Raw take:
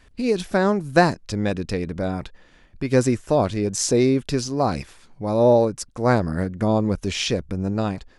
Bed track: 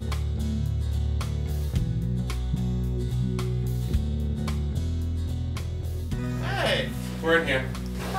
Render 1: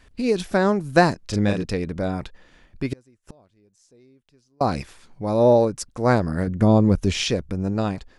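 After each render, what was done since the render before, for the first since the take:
0:01.19–0:01.64: double-tracking delay 39 ms −4 dB
0:02.93–0:04.61: gate with flip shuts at −24 dBFS, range −36 dB
0:06.47–0:07.24: low-shelf EQ 330 Hz +7 dB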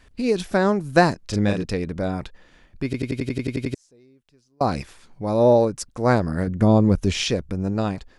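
0:02.85: stutter in place 0.09 s, 10 plays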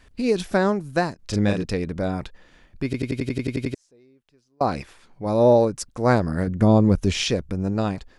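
0:00.55–0:01.19: fade out, to −12 dB
0:03.72–0:05.26: bass and treble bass −4 dB, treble −5 dB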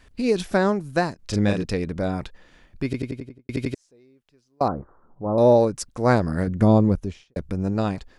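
0:02.83–0:03.49: fade out and dull
0:04.68–0:05.38: elliptic low-pass filter 1,300 Hz, stop band 50 dB
0:06.69–0:07.36: fade out and dull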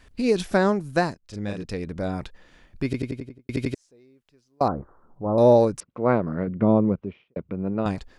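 0:01.18–0:02.99: fade in equal-power, from −19 dB
0:05.80–0:07.86: loudspeaker in its box 160–2,500 Hz, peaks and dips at 280 Hz −3 dB, 790 Hz −5 dB, 1,700 Hz −10 dB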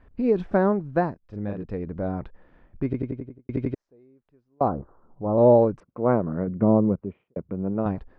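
low-pass filter 1,200 Hz 12 dB per octave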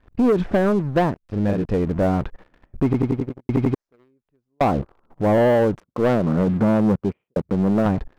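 downward compressor 12 to 1, threshold −20 dBFS, peak gain reduction 9.5 dB
leveller curve on the samples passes 3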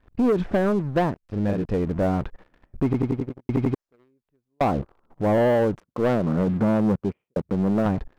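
level −3 dB

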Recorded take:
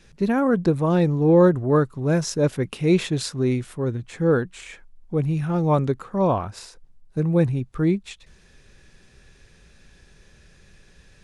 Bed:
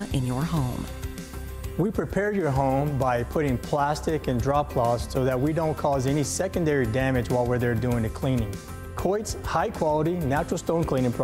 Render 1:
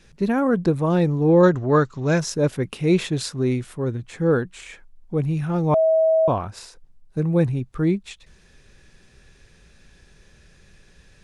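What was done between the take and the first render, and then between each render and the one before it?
0:01.43–0:02.20: drawn EQ curve 360 Hz 0 dB, 6,900 Hz +11 dB, 10,000 Hz −16 dB
0:05.74–0:06.28: beep over 643 Hz −14 dBFS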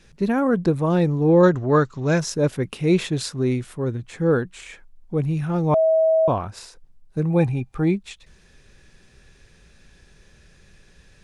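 0:07.30–0:07.94: hollow resonant body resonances 800/2,400 Hz, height 14 dB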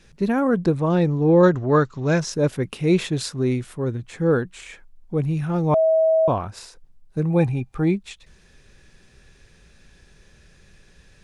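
0:00.74–0:02.33: low-pass filter 7,500 Hz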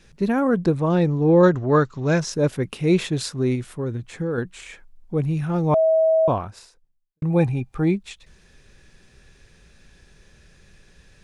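0:03.55–0:04.38: downward compressor, threshold −21 dBFS
0:06.35–0:07.22: fade out quadratic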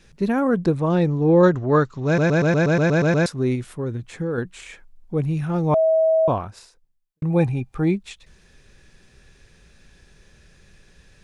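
0:02.06: stutter in place 0.12 s, 10 plays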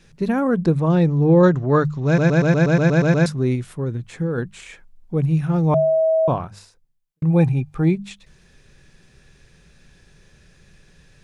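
parametric band 150 Hz +7 dB 0.51 octaves
mains-hum notches 50/100/150/200 Hz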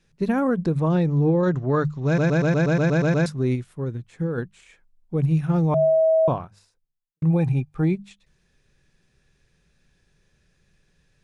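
brickwall limiter −12 dBFS, peak gain reduction 8.5 dB
expander for the loud parts 1.5 to 1, over −41 dBFS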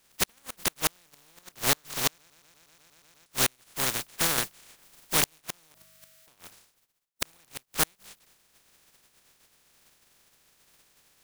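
compressing power law on the bin magnitudes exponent 0.13
gate with flip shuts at −8 dBFS, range −40 dB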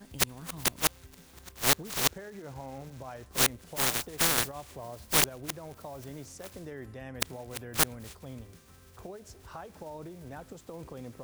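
mix in bed −19.5 dB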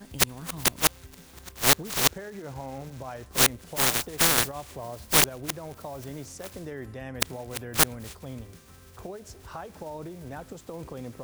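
level +4.5 dB
brickwall limiter −2 dBFS, peak gain reduction 1.5 dB

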